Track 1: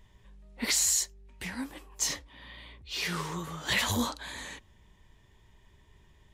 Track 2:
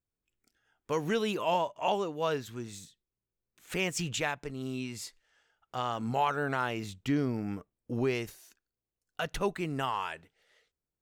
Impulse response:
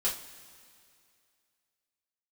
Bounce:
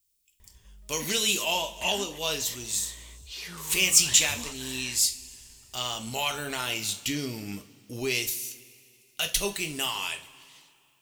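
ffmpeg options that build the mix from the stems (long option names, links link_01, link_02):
-filter_complex "[0:a]equalizer=frequency=60:width=1.6:gain=8.5,acompressor=threshold=-41dB:ratio=2,adelay=400,volume=-3.5dB[link_01];[1:a]lowshelf=frequency=140:gain=5,acontrast=77,aexciter=amount=4.2:drive=7.5:freq=2200,volume=-14.5dB,asplit=2[link_02][link_03];[link_03]volume=-7.5dB[link_04];[2:a]atrim=start_sample=2205[link_05];[link_04][link_05]afir=irnorm=-1:irlink=0[link_06];[link_01][link_02][link_06]amix=inputs=3:normalize=0,highshelf=frequency=3700:gain=7.5"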